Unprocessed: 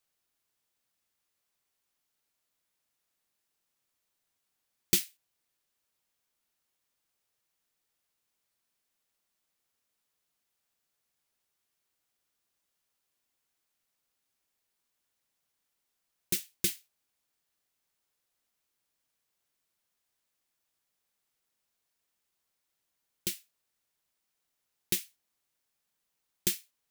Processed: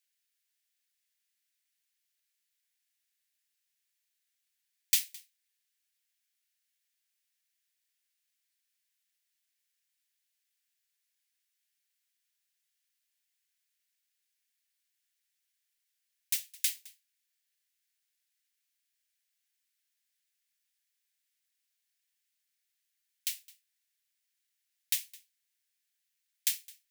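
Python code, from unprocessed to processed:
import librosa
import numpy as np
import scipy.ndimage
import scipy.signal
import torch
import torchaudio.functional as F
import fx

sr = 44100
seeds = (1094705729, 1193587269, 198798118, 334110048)

p1 = scipy.signal.sosfilt(scipy.signal.butter(8, 1600.0, 'highpass', fs=sr, output='sos'), x)
y = p1 + fx.echo_single(p1, sr, ms=213, db=-22.5, dry=0)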